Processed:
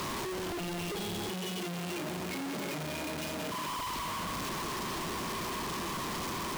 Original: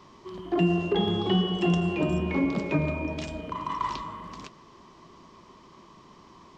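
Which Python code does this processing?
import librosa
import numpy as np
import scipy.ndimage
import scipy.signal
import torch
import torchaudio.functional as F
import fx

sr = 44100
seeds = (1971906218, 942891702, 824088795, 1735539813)

y = np.sign(x) * np.sqrt(np.mean(np.square(x)))
y = fx.highpass(y, sr, hz=130.0, slope=12, at=(1.29, 3.68))
y = F.gain(torch.from_numpy(y), -7.0).numpy()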